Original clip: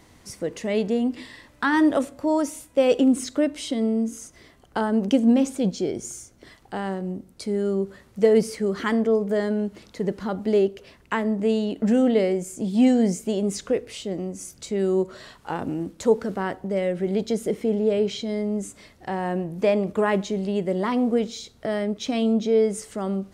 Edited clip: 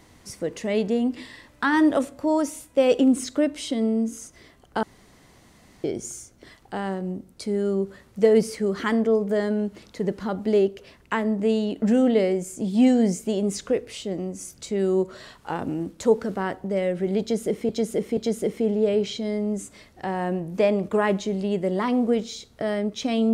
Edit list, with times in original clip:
4.83–5.84 room tone
17.21–17.69 loop, 3 plays

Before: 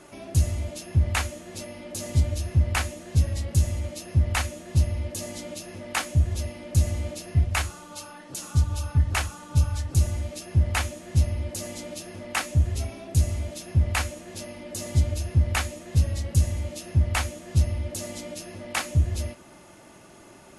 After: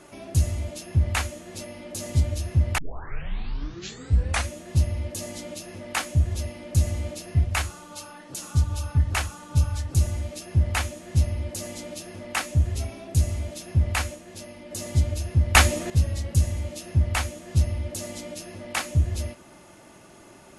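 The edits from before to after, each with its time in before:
2.78 tape start 1.72 s
14.16–14.71 gain -3 dB
15.55–15.9 gain +11 dB

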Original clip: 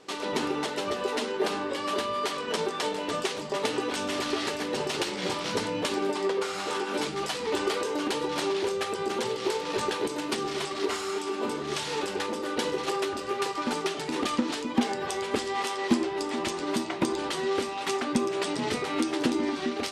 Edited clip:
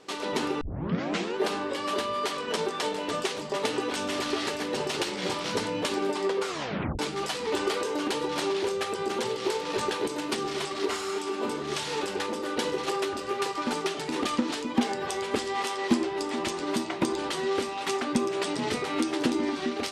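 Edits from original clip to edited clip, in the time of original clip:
0.61 tape start 0.75 s
6.48 tape stop 0.51 s

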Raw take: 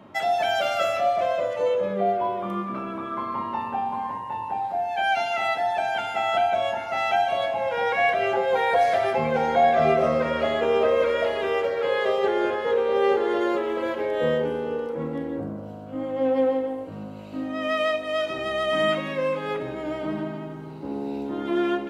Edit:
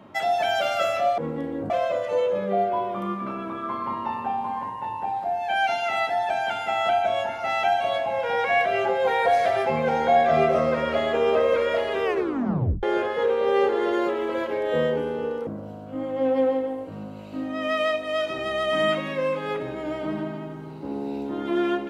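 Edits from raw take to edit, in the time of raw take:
11.52 tape stop 0.79 s
14.95–15.47 move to 1.18

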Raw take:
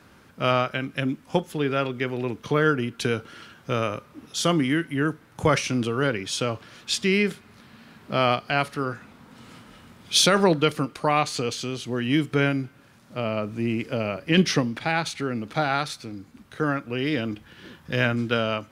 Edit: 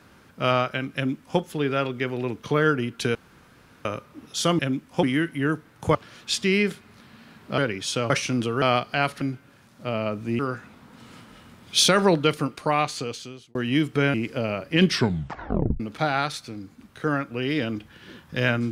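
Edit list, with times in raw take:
0.95–1.39 copy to 4.59
3.15–3.85 room tone
5.51–6.03 swap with 6.55–8.18
10.82–11.93 fade out equal-power
12.52–13.7 move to 8.77
14.45 tape stop 0.91 s

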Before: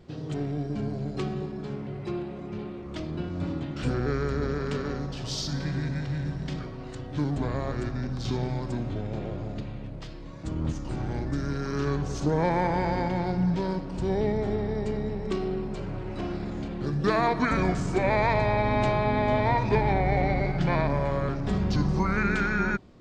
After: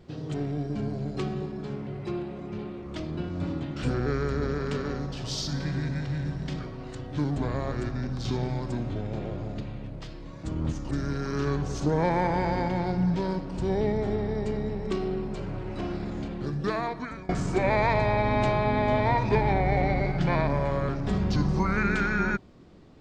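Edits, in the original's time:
10.91–11.31 cut
16.65–17.69 fade out, to -22.5 dB

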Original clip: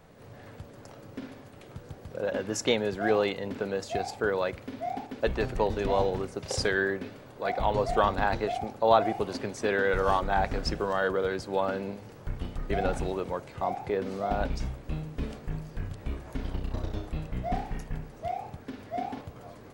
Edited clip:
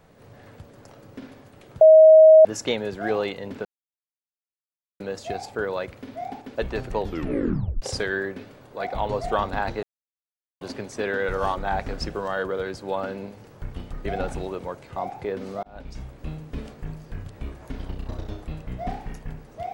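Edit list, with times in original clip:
1.81–2.45 bleep 632 Hz -7 dBFS
3.65 insert silence 1.35 s
5.66 tape stop 0.81 s
8.48–9.26 mute
14.28–14.85 fade in

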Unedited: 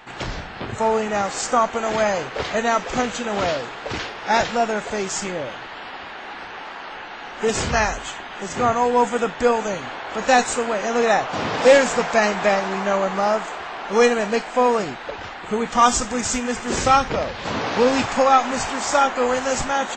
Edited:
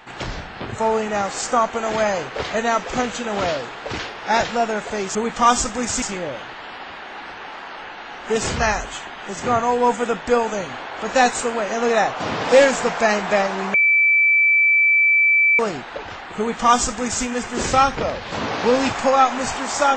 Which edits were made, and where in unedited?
12.87–14.72 bleep 2320 Hz -12 dBFS
15.51–16.38 copy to 5.15

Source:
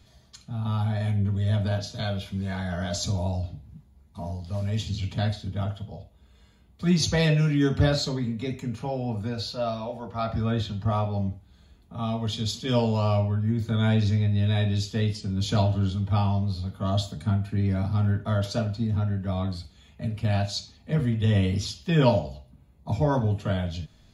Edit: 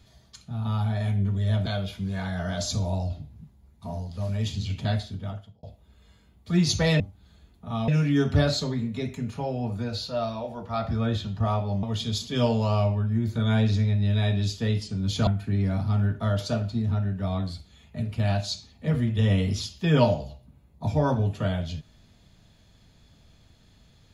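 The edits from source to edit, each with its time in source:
1.66–1.99 cut
5.35–5.96 fade out
11.28–12.16 move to 7.33
15.6–17.32 cut

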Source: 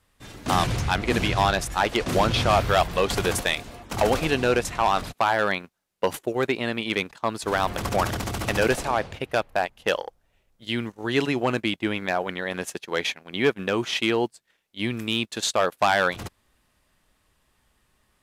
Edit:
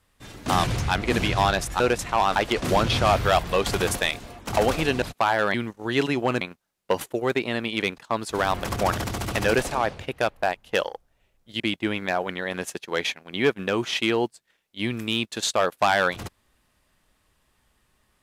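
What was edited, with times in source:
4.46–5.02 move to 1.8
10.73–11.6 move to 5.54

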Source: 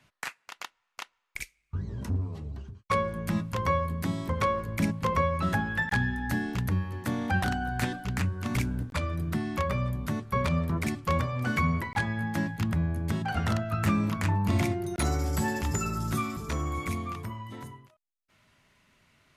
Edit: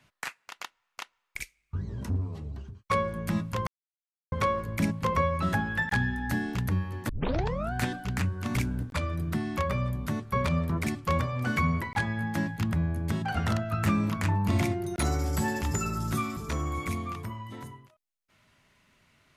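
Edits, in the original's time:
3.67–4.32 mute
7.09 tape start 0.64 s

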